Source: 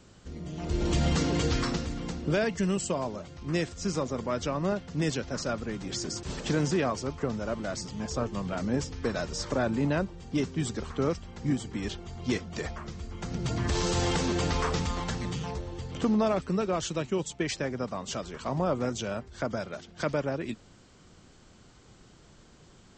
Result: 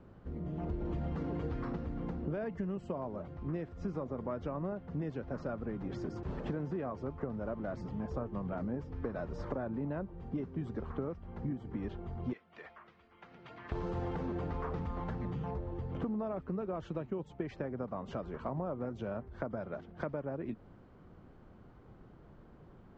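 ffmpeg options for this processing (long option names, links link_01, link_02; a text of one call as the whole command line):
ffmpeg -i in.wav -filter_complex "[0:a]asettb=1/sr,asplit=3[link_01][link_02][link_03];[link_01]atrim=end=12.334[link_04];[link_02]atrim=start=12.33:end=13.72,asetpts=PTS-STARTPTS,afade=type=in:duration=0.004:curve=qsin,afade=type=out:start_time=1.386:duration=0.004:curve=qsin,bandpass=frequency=2800:width_type=q:width=1.2[link_05];[link_03]atrim=start=13.716[link_06];[link_04][link_05]acrossfade=duration=0.004:curve1=hsin:curve2=qsin[link_07];[link_07][link_06]acrossfade=duration=0.004:curve1=qsin:curve2=hsin,lowpass=1200,acompressor=threshold=-34dB:ratio=6" out.wav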